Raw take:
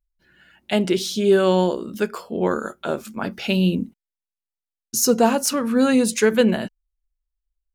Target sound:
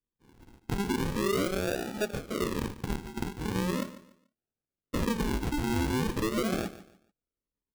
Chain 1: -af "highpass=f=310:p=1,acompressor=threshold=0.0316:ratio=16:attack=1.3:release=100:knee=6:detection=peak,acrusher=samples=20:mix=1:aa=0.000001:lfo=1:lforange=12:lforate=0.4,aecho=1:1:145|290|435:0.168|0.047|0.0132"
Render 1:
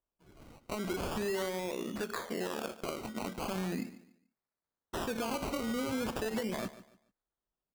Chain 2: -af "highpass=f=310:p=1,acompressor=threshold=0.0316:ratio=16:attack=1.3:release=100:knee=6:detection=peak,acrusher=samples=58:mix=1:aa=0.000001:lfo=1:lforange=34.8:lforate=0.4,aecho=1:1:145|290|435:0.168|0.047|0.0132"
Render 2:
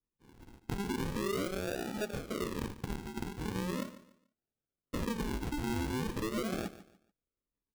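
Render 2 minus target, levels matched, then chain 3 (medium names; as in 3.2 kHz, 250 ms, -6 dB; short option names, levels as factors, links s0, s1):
compression: peak gain reduction +6 dB
-af "highpass=f=310:p=1,acompressor=threshold=0.0668:ratio=16:attack=1.3:release=100:knee=6:detection=peak,acrusher=samples=58:mix=1:aa=0.000001:lfo=1:lforange=34.8:lforate=0.4,aecho=1:1:145|290|435:0.168|0.047|0.0132"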